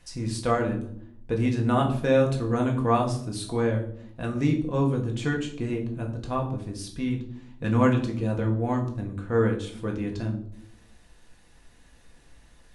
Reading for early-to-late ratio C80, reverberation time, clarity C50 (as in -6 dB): 13.5 dB, 0.65 s, 9.5 dB